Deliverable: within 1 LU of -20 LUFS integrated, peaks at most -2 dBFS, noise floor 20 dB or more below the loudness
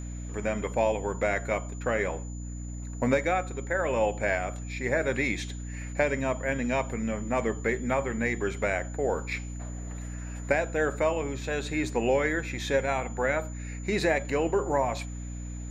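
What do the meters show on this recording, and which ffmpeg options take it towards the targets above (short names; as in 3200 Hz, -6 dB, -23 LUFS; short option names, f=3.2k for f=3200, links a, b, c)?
hum 60 Hz; harmonics up to 300 Hz; hum level -34 dBFS; steady tone 7000 Hz; tone level -48 dBFS; loudness -29.5 LUFS; peak -10.0 dBFS; loudness target -20.0 LUFS
-> -af "bandreject=f=60:t=h:w=4,bandreject=f=120:t=h:w=4,bandreject=f=180:t=h:w=4,bandreject=f=240:t=h:w=4,bandreject=f=300:t=h:w=4"
-af "bandreject=f=7k:w=30"
-af "volume=9.5dB,alimiter=limit=-2dB:level=0:latency=1"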